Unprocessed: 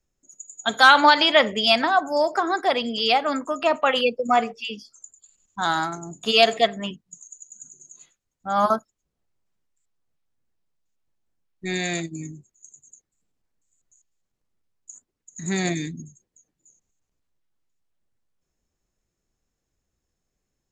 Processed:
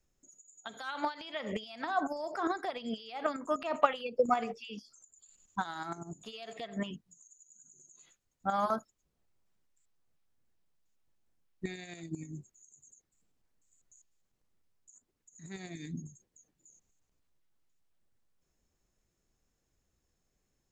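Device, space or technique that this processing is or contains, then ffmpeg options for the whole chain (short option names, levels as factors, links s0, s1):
de-esser from a sidechain: -filter_complex "[0:a]asplit=2[s0][s1];[s1]highpass=f=4400:w=0.5412,highpass=f=4400:w=1.3066,apad=whole_len=913468[s2];[s0][s2]sidechaincompress=threshold=0.002:ratio=8:attack=1.2:release=72"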